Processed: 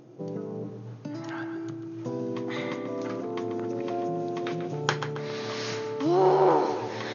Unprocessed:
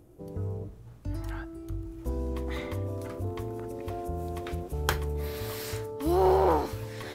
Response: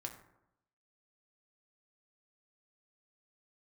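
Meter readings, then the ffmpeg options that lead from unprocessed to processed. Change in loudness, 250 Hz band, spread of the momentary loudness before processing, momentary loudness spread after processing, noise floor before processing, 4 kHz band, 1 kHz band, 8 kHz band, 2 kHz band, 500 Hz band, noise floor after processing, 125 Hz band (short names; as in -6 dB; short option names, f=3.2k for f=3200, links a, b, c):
+2.5 dB, +4.5 dB, 15 LU, 15 LU, -49 dBFS, +4.0 dB, +3.0 dB, -0.5 dB, +4.0 dB, +3.0 dB, -41 dBFS, -3.5 dB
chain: -filter_complex "[0:a]asplit=2[a][b];[b]adelay=137,lowpass=f=3.3k:p=1,volume=-8.5dB,asplit=2[c][d];[d]adelay=137,lowpass=f=3.3k:p=1,volume=0.47,asplit=2[e][f];[f]adelay=137,lowpass=f=3.3k:p=1,volume=0.47,asplit=2[g][h];[h]adelay=137,lowpass=f=3.3k:p=1,volume=0.47,asplit=2[i][j];[j]adelay=137,lowpass=f=3.3k:p=1,volume=0.47[k];[a][c][e][g][i][k]amix=inputs=6:normalize=0,asplit=2[l][m];[m]acompressor=threshold=-35dB:ratio=6,volume=2dB[n];[l][n]amix=inputs=2:normalize=0,afftfilt=real='re*between(b*sr/4096,110,6800)':imag='im*between(b*sr/4096,110,6800)':win_size=4096:overlap=0.75"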